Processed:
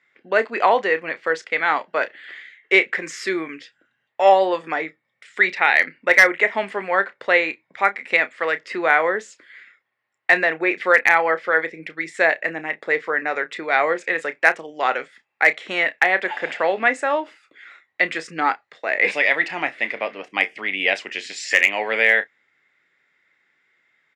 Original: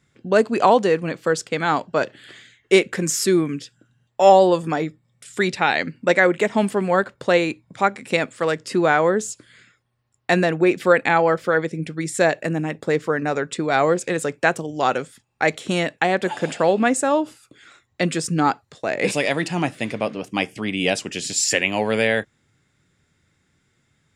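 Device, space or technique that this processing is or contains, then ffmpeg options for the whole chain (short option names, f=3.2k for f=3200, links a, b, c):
megaphone: -filter_complex "[0:a]highpass=490,lowpass=3.5k,equalizer=f=2k:t=o:w=0.55:g=12,asoftclip=type=hard:threshold=-2.5dB,asplit=2[a][b];[b]adelay=31,volume=-13dB[c];[a][c]amix=inputs=2:normalize=0,volume=-1dB"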